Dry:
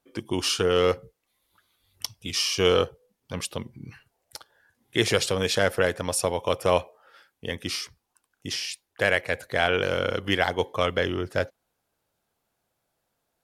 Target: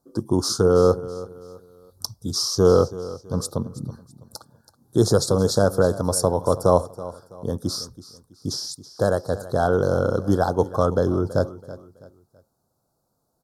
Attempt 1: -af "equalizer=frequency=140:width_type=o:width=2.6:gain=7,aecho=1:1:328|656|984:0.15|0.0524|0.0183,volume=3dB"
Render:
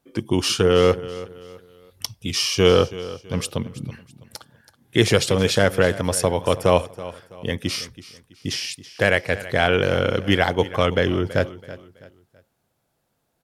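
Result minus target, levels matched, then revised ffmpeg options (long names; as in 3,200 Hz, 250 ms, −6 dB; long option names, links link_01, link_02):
2,000 Hz band +11.5 dB
-af "asuperstop=centerf=2400:order=8:qfactor=0.85,equalizer=frequency=140:width_type=o:width=2.6:gain=7,aecho=1:1:328|656|984:0.15|0.0524|0.0183,volume=3dB"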